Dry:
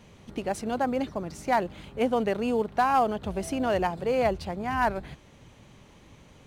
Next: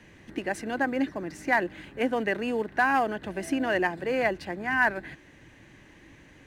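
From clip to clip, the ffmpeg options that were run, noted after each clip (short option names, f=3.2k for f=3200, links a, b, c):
-filter_complex "[0:a]superequalizer=6b=2.51:11b=3.98:12b=1.78,acrossover=split=140|900|3000[a][b][c][d];[a]acompressor=threshold=-50dB:ratio=6[e];[e][b][c][d]amix=inputs=4:normalize=0,volume=-2.5dB"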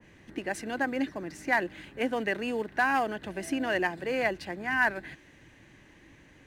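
-af "adynamicequalizer=threshold=0.0126:dfrequency=2000:dqfactor=0.7:tfrequency=2000:tqfactor=0.7:attack=5:release=100:ratio=0.375:range=2:mode=boostabove:tftype=highshelf,volume=-3dB"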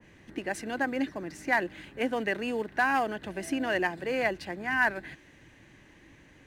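-af anull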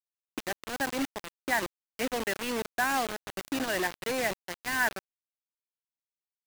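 -af "acrusher=bits=4:mix=0:aa=0.000001,volume=-2.5dB"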